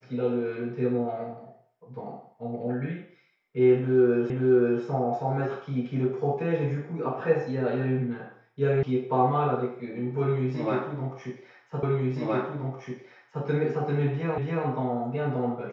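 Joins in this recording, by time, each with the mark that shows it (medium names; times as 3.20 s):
4.30 s: repeat of the last 0.53 s
8.83 s: sound stops dead
11.83 s: repeat of the last 1.62 s
14.38 s: repeat of the last 0.28 s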